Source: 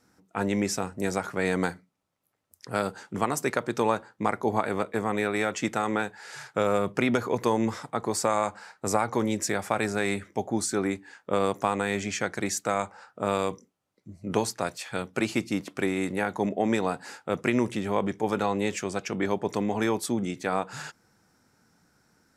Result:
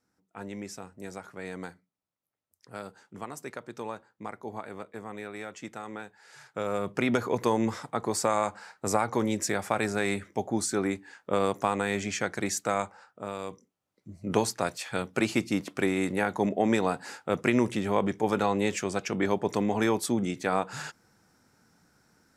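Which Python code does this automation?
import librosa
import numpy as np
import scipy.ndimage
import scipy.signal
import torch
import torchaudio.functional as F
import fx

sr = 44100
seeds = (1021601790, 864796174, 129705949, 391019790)

y = fx.gain(x, sr, db=fx.line((6.16, -12.5), (7.14, -1.0), (12.8, -1.0), (13.34, -10.5), (14.18, 0.5)))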